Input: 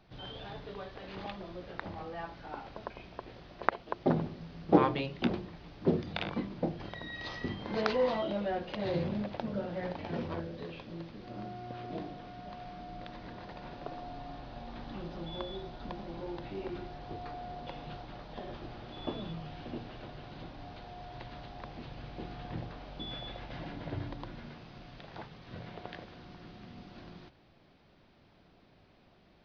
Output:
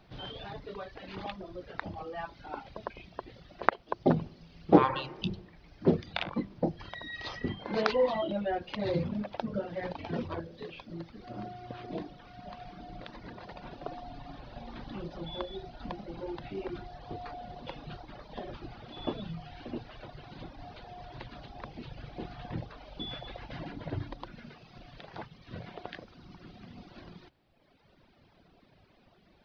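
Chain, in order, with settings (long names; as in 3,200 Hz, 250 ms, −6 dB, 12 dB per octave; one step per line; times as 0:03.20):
healed spectral selection 0:04.91–0:05.36, 220–2,600 Hz both
reverb reduction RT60 1.7 s
level +3.5 dB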